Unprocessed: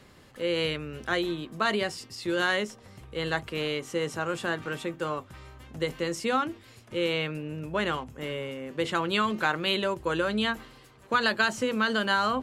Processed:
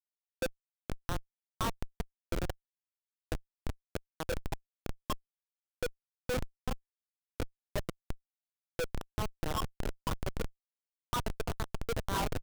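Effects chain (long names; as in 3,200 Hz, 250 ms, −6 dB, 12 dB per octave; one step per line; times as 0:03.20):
adaptive Wiener filter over 15 samples
parametric band 550 Hz −3.5 dB 0.81 octaves
mains-hum notches 60/120/180/240 Hz
double-tracking delay 28 ms −10 dB
feedback echo with a high-pass in the loop 336 ms, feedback 43%, high-pass 320 Hz, level −4 dB
LFO wah 2 Hz 460–1,100 Hz, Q 6.5
bass and treble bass −1 dB, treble +6 dB
comparator with hysteresis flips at −33.5 dBFS
downward compressor 2.5 to 1, threshold −44 dBFS, peak gain reduction 3.5 dB
level +13 dB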